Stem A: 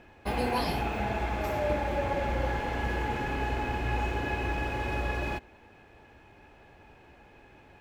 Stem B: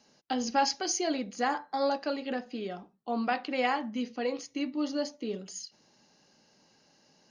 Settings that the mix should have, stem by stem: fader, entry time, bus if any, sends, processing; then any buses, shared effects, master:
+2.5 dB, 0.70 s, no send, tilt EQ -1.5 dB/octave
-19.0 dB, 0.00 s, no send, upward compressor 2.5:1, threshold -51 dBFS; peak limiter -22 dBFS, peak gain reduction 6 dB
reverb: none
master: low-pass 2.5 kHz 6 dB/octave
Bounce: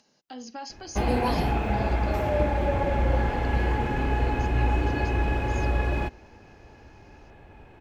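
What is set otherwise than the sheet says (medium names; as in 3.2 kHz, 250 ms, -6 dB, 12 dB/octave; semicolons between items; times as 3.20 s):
stem B -19.0 dB -> -8.5 dB; master: missing low-pass 2.5 kHz 6 dB/octave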